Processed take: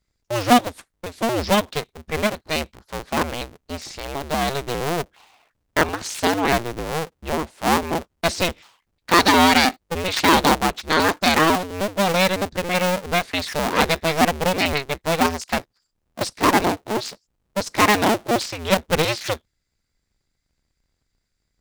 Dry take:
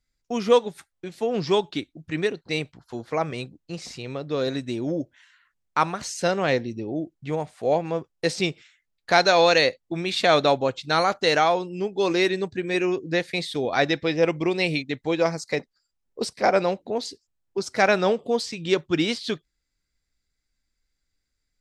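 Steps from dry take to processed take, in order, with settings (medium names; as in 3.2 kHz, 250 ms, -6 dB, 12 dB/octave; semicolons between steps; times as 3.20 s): cycle switcher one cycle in 2, inverted; trim +3 dB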